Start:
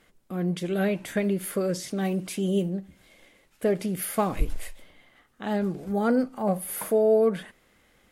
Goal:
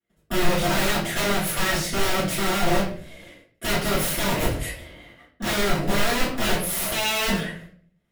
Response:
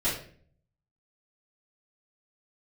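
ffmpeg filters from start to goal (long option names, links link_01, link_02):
-filter_complex "[0:a]agate=range=-35dB:threshold=-57dB:ratio=16:detection=peak,highpass=frequency=51:width=0.5412,highpass=frequency=51:width=1.3066,acompressor=threshold=-25dB:ratio=16,aeval=exprs='(mod(28.2*val(0)+1,2)-1)/28.2':channel_layout=same[link_01];[1:a]atrim=start_sample=2205[link_02];[link_01][link_02]afir=irnorm=-1:irlink=0,volume=1.5dB"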